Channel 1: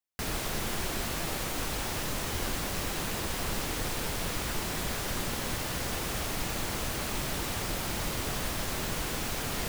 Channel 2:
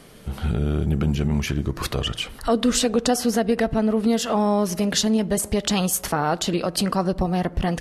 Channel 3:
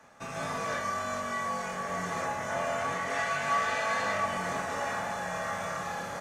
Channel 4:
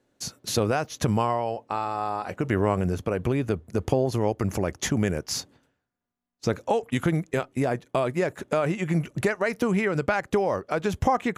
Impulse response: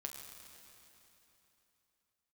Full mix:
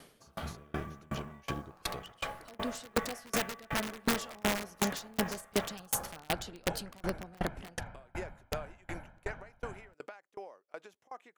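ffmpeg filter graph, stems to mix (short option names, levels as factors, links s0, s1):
-filter_complex "[0:a]lowpass=f=1700:w=0.5412,lowpass=f=1700:w=1.3066,aecho=1:1:1.3:0.87,adelay=250,volume=0.282[s0];[1:a]volume=0.631[s1];[2:a]afwtdn=0.0178,aemphasis=mode=reproduction:type=50fm,acrusher=bits=8:mode=log:mix=0:aa=0.000001,volume=1.26[s2];[3:a]highpass=380,acompressor=threshold=0.0398:ratio=5,volume=0.376[s3];[s0][s2]amix=inputs=2:normalize=0,highshelf=f=3900:g=11.5,alimiter=level_in=2:limit=0.0631:level=0:latency=1:release=198,volume=0.501,volume=1[s4];[s1][s3]amix=inputs=2:normalize=0,lowshelf=f=180:g=-8.5,alimiter=limit=0.0794:level=0:latency=1:release=473,volume=1[s5];[s4][s5]amix=inputs=2:normalize=0,dynaudnorm=f=390:g=11:m=1.78,aeval=exprs='(mod(7.94*val(0)+1,2)-1)/7.94':c=same,aeval=exprs='val(0)*pow(10,-32*if(lt(mod(2.7*n/s,1),2*abs(2.7)/1000),1-mod(2.7*n/s,1)/(2*abs(2.7)/1000),(mod(2.7*n/s,1)-2*abs(2.7)/1000)/(1-2*abs(2.7)/1000))/20)':c=same"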